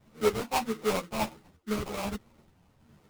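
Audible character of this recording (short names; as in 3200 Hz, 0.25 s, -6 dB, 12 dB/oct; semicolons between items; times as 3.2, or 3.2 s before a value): phasing stages 6, 1.4 Hz, lowest notch 400–1200 Hz; aliases and images of a low sample rate 1700 Hz, jitter 20%; a shimmering, thickened sound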